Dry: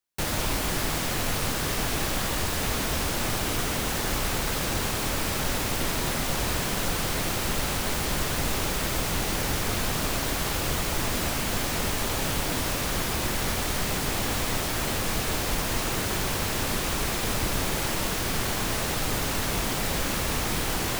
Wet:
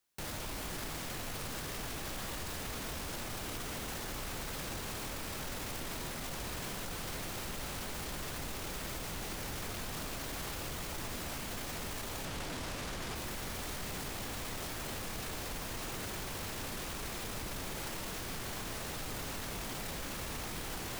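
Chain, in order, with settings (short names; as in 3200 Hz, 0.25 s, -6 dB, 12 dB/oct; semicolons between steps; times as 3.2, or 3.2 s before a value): 12.25–13.16 high shelf 11000 Hz -11.5 dB; limiter -36.5 dBFS, peak gain reduction 22.5 dB; gain +5 dB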